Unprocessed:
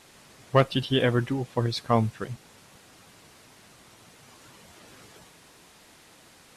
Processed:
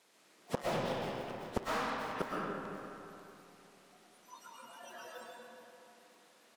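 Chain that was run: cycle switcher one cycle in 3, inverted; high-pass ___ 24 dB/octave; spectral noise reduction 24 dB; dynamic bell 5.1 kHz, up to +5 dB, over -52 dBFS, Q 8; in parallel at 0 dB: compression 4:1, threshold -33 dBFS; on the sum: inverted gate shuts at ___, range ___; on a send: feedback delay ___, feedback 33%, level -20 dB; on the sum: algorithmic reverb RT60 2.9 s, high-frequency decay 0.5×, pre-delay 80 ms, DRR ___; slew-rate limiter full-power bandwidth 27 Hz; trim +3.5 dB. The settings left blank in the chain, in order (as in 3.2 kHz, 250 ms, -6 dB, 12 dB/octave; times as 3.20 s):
190 Hz, -19 dBFS, -36 dB, 540 ms, -2.5 dB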